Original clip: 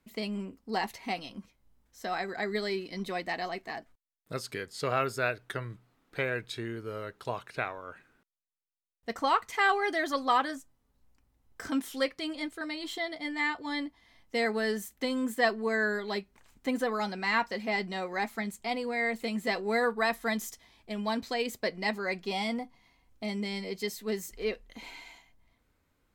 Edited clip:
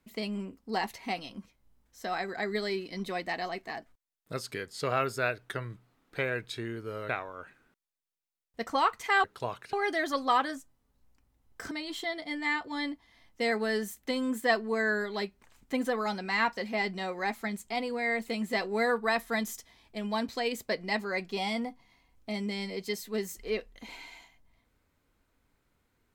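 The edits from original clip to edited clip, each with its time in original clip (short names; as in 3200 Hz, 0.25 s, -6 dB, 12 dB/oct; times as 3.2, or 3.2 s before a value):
7.09–7.58 move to 9.73
11.71–12.65 cut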